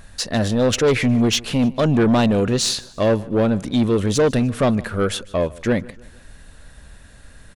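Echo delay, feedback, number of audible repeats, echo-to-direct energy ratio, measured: 151 ms, 43%, 2, −21.0 dB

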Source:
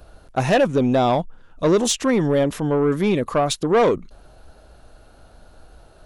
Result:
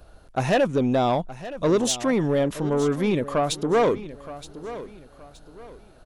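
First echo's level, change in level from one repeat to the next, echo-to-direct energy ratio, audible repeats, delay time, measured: −15.0 dB, −9.5 dB, −14.5 dB, 3, 921 ms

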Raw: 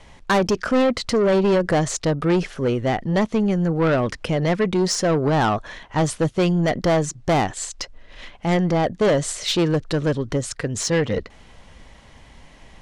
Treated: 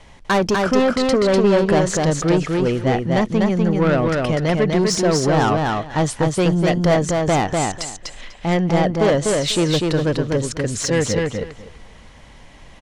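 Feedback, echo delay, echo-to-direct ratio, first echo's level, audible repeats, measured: 17%, 247 ms, −3.0 dB, −3.0 dB, 3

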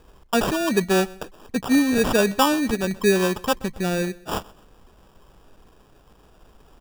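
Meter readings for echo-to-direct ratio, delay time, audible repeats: −22.0 dB, 128 ms, 2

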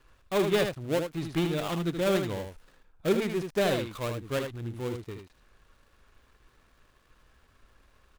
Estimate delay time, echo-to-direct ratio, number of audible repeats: 77 ms, −6.5 dB, 1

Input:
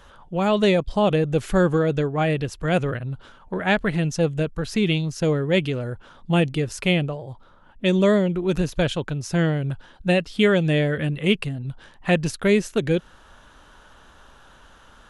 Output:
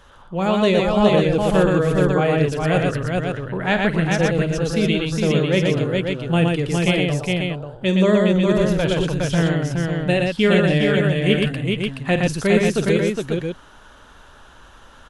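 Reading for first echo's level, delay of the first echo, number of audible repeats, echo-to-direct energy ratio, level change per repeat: −11.0 dB, 48 ms, 4, 1.5 dB, repeats not evenly spaced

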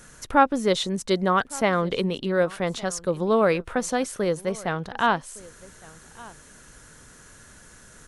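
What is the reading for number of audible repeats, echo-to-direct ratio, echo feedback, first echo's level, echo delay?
1, −22.0 dB, repeats not evenly spaced, −22.0 dB, 1,162 ms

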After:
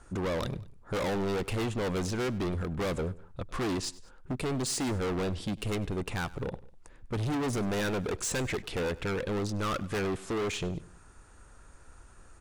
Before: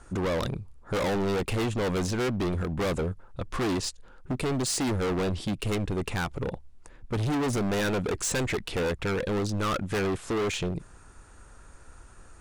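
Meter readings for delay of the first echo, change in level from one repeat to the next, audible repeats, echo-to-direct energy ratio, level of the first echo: 99 ms, −5.5 dB, 2, −19.5 dB, −20.5 dB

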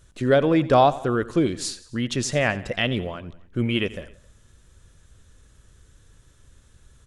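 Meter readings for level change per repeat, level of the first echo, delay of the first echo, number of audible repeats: −5.0 dB, −18.0 dB, 89 ms, 3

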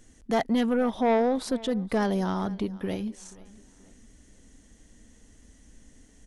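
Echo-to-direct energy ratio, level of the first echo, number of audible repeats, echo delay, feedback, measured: −21.0 dB, −21.5 dB, 2, 481 ms, 38%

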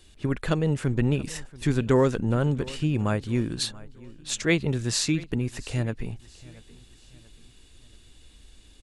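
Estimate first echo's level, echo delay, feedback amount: −21.0 dB, 682 ms, 42%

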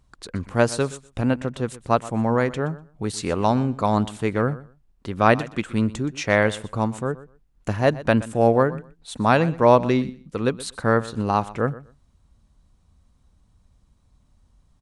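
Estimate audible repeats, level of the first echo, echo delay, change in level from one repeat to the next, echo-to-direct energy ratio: 2, −18.0 dB, 123 ms, −15.5 dB, −18.0 dB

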